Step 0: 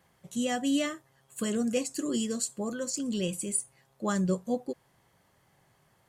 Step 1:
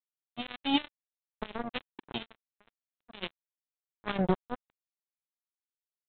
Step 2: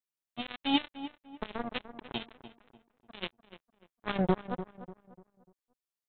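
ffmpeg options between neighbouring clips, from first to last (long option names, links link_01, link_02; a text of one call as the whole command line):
ffmpeg -i in.wav -af "equalizer=frequency=640:width=1.5:gain=-13.5,aresample=8000,acrusher=bits=3:mix=0:aa=0.5,aresample=44100,volume=5.5dB" out.wav
ffmpeg -i in.wav -filter_complex "[0:a]asplit=2[link_01][link_02];[link_02]adelay=296,lowpass=frequency=1700:poles=1,volume=-12dB,asplit=2[link_03][link_04];[link_04]adelay=296,lowpass=frequency=1700:poles=1,volume=0.37,asplit=2[link_05][link_06];[link_06]adelay=296,lowpass=frequency=1700:poles=1,volume=0.37,asplit=2[link_07][link_08];[link_08]adelay=296,lowpass=frequency=1700:poles=1,volume=0.37[link_09];[link_01][link_03][link_05][link_07][link_09]amix=inputs=5:normalize=0" out.wav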